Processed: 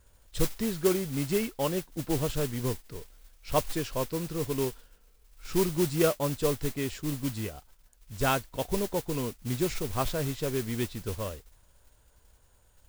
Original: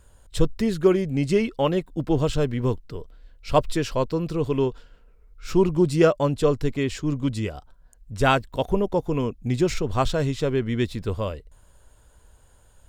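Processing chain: modulation noise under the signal 11 dB; trim -7.5 dB

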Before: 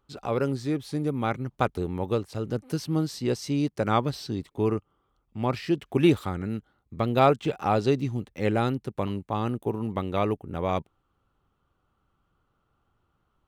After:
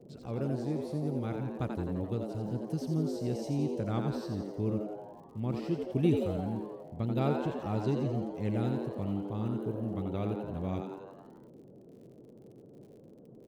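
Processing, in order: FFT filter 180 Hz 0 dB, 960 Hz -15 dB, 7.1 kHz -9 dB; frequency-shifting echo 86 ms, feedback 60%, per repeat +100 Hz, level -5.5 dB; crackle 71 per s -50 dBFS; band noise 110–490 Hz -50 dBFS; trim -3.5 dB

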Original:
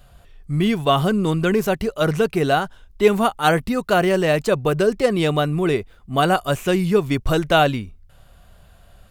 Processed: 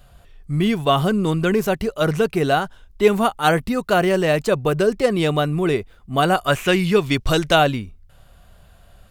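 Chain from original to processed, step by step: 6.43–7.54 s: peaking EQ 1.7 kHz -> 5.9 kHz +8 dB 2.1 oct

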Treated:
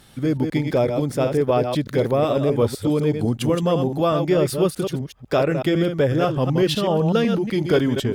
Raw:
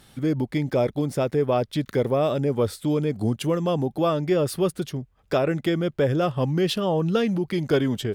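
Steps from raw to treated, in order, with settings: chunks repeated in reverse 125 ms, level -6 dB; trim +2.5 dB

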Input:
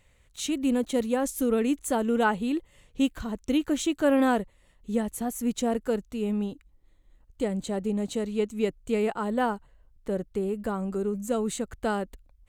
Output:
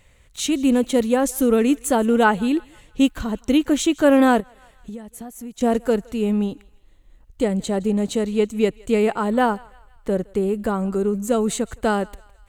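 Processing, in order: on a send: thinning echo 165 ms, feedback 52%, high-pass 770 Hz, level -22.5 dB; 4.40–5.61 s: on the sum: compression 6:1, threshold -41 dBFS, peak gain reduction 18.5 dB; trim +7.5 dB

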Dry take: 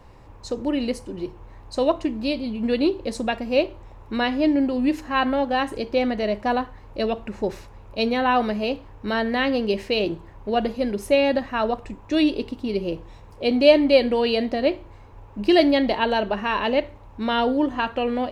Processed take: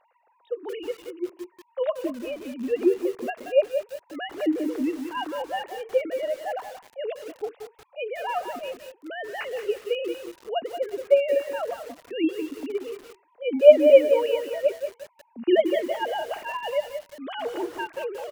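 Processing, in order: formants replaced by sine waves; on a send: delay 202 ms -14.5 dB; on the sum: bit-crushed delay 179 ms, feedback 35%, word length 6-bit, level -8 dB; trim -3.5 dB

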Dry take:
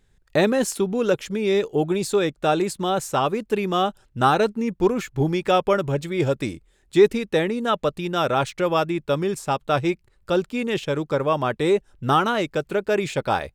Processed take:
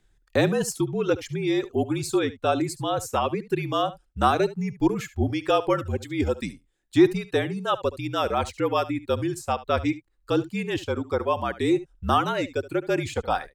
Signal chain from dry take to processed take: reverb removal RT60 1.7 s; frequency shift -48 Hz; delay 72 ms -17 dB; trim -2 dB

